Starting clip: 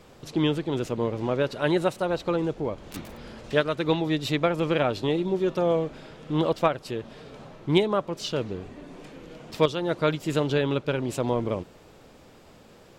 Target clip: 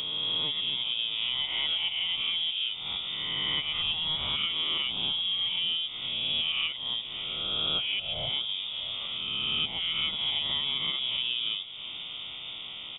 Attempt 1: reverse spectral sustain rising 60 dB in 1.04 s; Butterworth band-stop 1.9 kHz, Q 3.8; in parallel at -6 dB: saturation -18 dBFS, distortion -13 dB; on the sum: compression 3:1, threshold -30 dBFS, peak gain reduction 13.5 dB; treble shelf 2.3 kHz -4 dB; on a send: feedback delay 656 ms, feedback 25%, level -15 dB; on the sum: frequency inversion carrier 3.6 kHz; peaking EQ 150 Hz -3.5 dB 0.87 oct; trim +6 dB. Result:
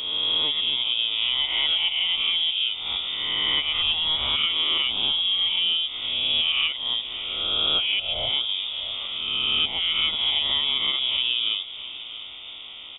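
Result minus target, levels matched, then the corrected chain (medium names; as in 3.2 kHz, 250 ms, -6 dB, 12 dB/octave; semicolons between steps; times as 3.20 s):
125 Hz band -7.0 dB; compression: peak gain reduction -5.5 dB; saturation: distortion -7 dB
reverse spectral sustain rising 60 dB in 1.04 s; Butterworth band-stop 1.9 kHz, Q 3.8; in parallel at -6 dB: saturation -28 dBFS, distortion -6 dB; on the sum: compression 3:1, threshold -39 dBFS, peak gain reduction 18.5 dB; treble shelf 2.3 kHz -4 dB; on a send: feedback delay 656 ms, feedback 25%, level -15 dB; on the sum: frequency inversion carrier 3.6 kHz; peaking EQ 150 Hz +7.5 dB 0.87 oct; trim +6 dB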